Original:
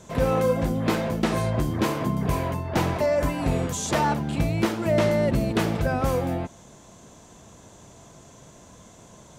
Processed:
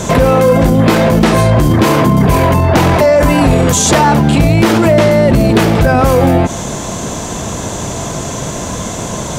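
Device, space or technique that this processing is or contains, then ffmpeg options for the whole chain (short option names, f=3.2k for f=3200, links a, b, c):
loud club master: -af "acompressor=threshold=-25dB:ratio=2.5,asoftclip=type=hard:threshold=-19.5dB,alimiter=level_in=29.5dB:limit=-1dB:release=50:level=0:latency=1,volume=-1dB"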